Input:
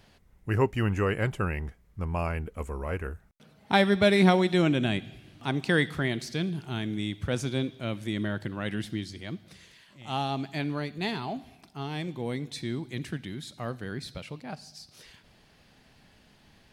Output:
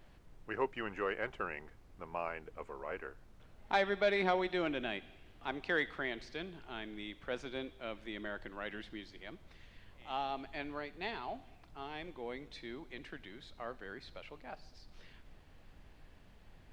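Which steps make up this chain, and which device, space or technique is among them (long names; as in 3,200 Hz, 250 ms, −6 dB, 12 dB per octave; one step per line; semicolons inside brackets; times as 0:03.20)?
aircraft cabin announcement (band-pass filter 430–3,000 Hz; soft clipping −13 dBFS, distortion −21 dB; brown noise bed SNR 15 dB)
level −5.5 dB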